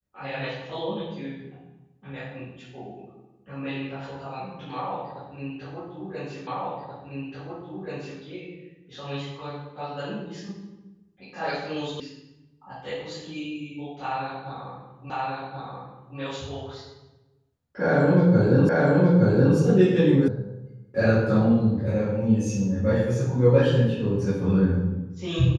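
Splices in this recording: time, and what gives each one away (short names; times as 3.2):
6.47 repeat of the last 1.73 s
12 sound cut off
15.1 repeat of the last 1.08 s
18.69 repeat of the last 0.87 s
20.28 sound cut off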